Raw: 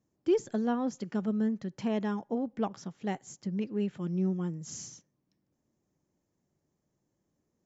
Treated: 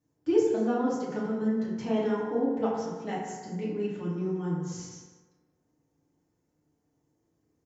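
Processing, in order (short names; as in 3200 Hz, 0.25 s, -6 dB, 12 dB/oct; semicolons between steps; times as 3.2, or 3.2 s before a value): 4.52–4.92 high shelf 6600 Hz -8.5 dB; echo 0.18 s -14.5 dB; FDN reverb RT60 1.4 s, low-frequency decay 0.7×, high-frequency decay 0.4×, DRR -8.5 dB; gain -5.5 dB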